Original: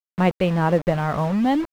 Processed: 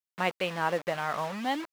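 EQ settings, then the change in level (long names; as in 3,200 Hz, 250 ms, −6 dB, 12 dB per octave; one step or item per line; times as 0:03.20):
high-pass filter 1,500 Hz 6 dB per octave
0.0 dB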